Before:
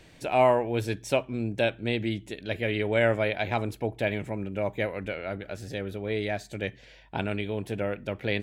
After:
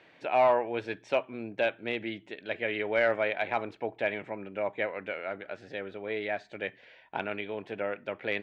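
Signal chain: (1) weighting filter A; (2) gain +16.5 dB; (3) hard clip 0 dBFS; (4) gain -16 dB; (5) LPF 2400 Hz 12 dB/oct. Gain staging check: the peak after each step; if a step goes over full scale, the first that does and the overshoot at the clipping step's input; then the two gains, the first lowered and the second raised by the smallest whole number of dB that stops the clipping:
-11.0, +5.5, 0.0, -16.0, -15.5 dBFS; step 2, 5.5 dB; step 2 +10.5 dB, step 4 -10 dB

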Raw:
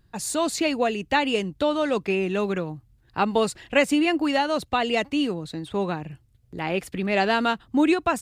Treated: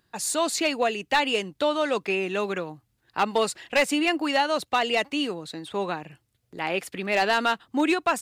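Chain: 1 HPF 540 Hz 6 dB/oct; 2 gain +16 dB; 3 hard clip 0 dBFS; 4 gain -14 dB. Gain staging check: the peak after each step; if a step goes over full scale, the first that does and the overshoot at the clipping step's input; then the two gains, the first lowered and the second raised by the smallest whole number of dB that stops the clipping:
-7.0, +9.0, 0.0, -14.0 dBFS; step 2, 9.0 dB; step 2 +7 dB, step 4 -5 dB

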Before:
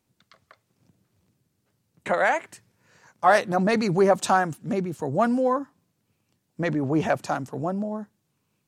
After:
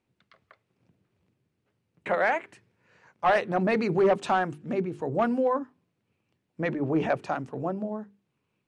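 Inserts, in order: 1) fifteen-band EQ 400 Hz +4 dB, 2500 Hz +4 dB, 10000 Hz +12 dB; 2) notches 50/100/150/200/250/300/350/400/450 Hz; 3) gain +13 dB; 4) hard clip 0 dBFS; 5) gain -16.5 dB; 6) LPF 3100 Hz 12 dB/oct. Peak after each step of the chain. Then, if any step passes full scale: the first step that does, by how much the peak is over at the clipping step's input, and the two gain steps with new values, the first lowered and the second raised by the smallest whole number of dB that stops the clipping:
-5.0, -5.5, +7.5, 0.0, -16.5, -16.0 dBFS; step 3, 7.5 dB; step 3 +5 dB, step 5 -8.5 dB

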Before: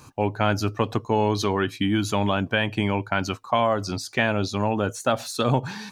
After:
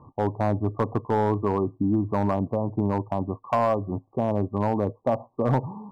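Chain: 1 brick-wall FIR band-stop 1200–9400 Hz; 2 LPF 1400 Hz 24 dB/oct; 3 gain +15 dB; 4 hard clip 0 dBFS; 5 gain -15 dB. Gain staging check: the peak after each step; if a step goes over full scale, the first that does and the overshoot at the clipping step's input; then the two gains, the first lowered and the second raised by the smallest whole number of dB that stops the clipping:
-8.5, -8.5, +6.5, 0.0, -15.0 dBFS; step 3, 6.5 dB; step 3 +8 dB, step 5 -8 dB

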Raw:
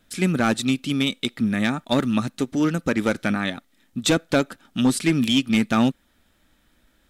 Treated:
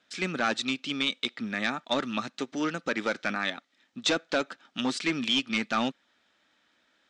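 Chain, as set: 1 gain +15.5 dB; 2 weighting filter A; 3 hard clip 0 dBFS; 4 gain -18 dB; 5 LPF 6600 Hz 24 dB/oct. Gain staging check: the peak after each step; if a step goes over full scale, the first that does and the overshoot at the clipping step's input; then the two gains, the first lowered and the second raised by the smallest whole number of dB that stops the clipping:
+5.0, +8.5, 0.0, -18.0, -16.0 dBFS; step 1, 8.5 dB; step 1 +6.5 dB, step 4 -9 dB

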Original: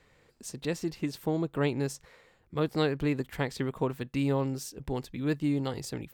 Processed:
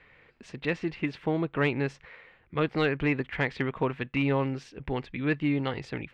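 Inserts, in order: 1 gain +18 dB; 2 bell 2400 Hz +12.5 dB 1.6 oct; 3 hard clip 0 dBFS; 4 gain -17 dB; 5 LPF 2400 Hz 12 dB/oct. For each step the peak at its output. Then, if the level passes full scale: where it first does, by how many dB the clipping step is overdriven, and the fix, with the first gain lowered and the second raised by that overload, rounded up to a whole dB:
+5.0, +8.5, 0.0, -17.0, -16.5 dBFS; step 1, 8.5 dB; step 1 +9 dB, step 4 -8 dB

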